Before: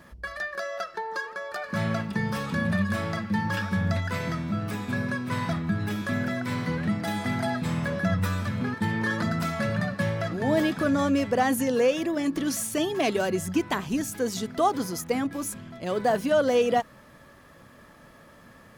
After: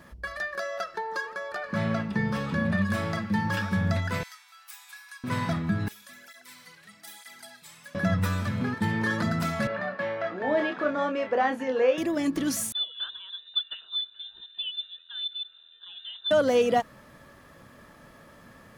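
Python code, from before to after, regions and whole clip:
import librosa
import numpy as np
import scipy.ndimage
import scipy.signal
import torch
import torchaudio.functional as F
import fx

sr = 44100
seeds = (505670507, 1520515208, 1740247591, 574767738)

y = fx.chain(x, sr, fx.high_shelf(hz=6600.0, db=-12.0),
    fx.doubler(ms=14.0, db=-13.0), at=(1.52, 2.82))
y = fx.chain(y, sr, fx.brickwall_highpass(low_hz=690.0),
    fx.differentiator(), at=(4.23, 5.24))
y = fx.chain(y, sr, fx.differentiator(),
    fx.flanger_cancel(hz=1.1, depth_ms=4.3), at=(5.88, 7.95))
y = fx.chain(y, sr, fx.bandpass_edges(low_hz=400.0, high_hz=2500.0),
    fx.doubler(ms=27.0, db=-6.5), at=(9.67, 11.98))
y = fx.chain(y, sr, fx.vowel_filter(vowel='u'),
    fx.freq_invert(carrier_hz=3800), at=(12.72, 16.31))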